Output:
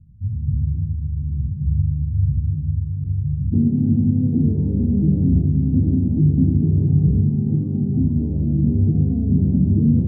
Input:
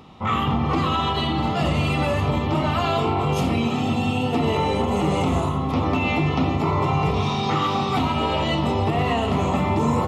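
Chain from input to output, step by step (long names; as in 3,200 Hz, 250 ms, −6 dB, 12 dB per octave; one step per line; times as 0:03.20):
inverse Chebyshev low-pass filter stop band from 730 Hz, stop band 80 dB, from 0:03.52 stop band from 1,500 Hz
level +8 dB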